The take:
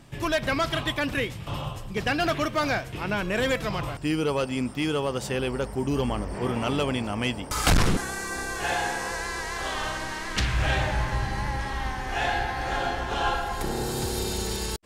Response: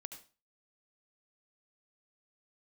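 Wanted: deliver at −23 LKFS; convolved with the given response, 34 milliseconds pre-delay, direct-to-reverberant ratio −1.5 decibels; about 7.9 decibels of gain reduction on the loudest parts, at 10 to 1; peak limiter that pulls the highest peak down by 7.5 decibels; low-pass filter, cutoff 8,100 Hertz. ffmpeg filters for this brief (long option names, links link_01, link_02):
-filter_complex "[0:a]lowpass=8100,acompressor=threshold=-25dB:ratio=10,alimiter=level_in=0.5dB:limit=-24dB:level=0:latency=1,volume=-0.5dB,asplit=2[link_01][link_02];[1:a]atrim=start_sample=2205,adelay=34[link_03];[link_02][link_03]afir=irnorm=-1:irlink=0,volume=6dB[link_04];[link_01][link_04]amix=inputs=2:normalize=0,volume=6.5dB"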